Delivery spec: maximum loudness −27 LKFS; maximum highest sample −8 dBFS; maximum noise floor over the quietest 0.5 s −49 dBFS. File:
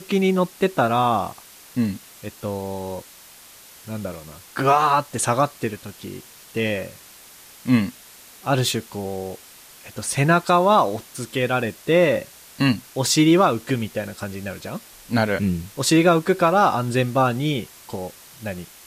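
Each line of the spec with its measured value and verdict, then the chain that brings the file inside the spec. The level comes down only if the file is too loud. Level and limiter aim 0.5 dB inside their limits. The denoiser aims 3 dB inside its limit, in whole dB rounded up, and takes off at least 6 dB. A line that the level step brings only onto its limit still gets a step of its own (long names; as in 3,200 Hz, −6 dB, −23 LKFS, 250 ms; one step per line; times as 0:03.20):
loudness −21.0 LKFS: out of spec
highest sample −6.0 dBFS: out of spec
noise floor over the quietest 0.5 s −46 dBFS: out of spec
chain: level −6.5 dB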